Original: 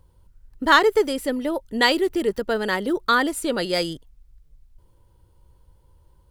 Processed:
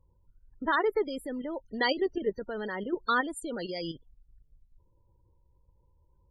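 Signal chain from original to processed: level quantiser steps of 10 dB; loudest bins only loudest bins 32; gain -4.5 dB

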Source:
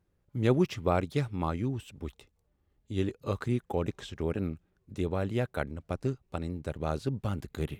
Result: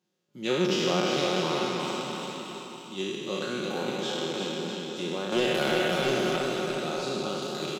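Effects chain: spectral trails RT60 2.70 s; HPF 180 Hz 24 dB/oct; 5.32–6.36 sample leveller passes 2; band shelf 4400 Hz +10.5 dB; comb 5.5 ms, depth 49%; bouncing-ball echo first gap 0.35 s, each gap 0.85×, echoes 5; gain -5.5 dB

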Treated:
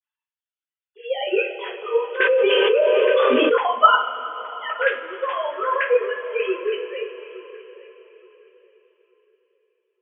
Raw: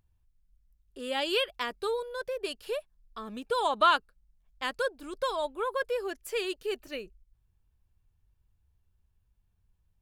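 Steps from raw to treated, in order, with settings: sine-wave speech; high shelf 2200 Hz +10 dB; on a send: darkening echo 0.869 s, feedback 25%, low-pass 2600 Hz, level -18 dB; on the sum: two-slope reverb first 0.33 s, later 4.2 s, from -19 dB, DRR -8 dB; 2.2–3.58 fast leveller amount 100%; gain -1 dB

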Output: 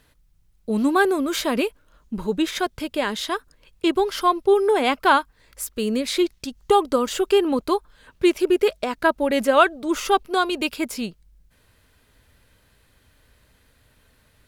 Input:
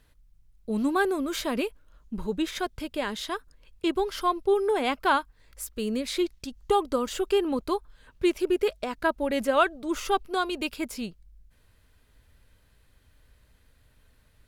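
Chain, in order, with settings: low shelf 73 Hz -10.5 dB; gain +6.5 dB

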